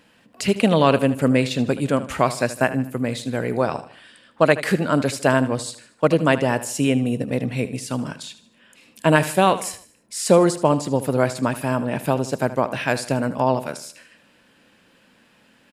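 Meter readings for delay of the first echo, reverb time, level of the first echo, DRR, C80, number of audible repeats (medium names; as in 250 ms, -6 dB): 77 ms, no reverb, -14.5 dB, no reverb, no reverb, 3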